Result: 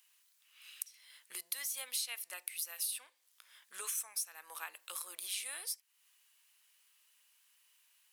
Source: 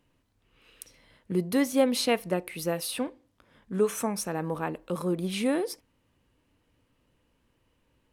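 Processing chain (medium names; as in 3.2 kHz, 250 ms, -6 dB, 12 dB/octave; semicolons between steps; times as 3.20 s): high-pass 1.1 kHz 12 dB/octave; differentiator; compression 3:1, threshold -54 dBFS, peak gain reduction 18.5 dB; trim +13 dB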